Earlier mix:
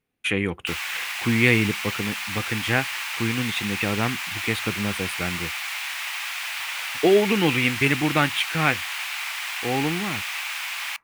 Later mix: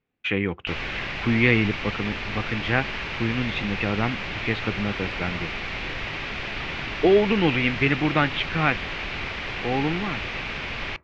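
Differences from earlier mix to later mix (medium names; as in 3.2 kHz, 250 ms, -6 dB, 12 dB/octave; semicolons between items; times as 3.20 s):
background: remove steep high-pass 810 Hz 36 dB/octave; master: add Bessel low-pass 3.2 kHz, order 8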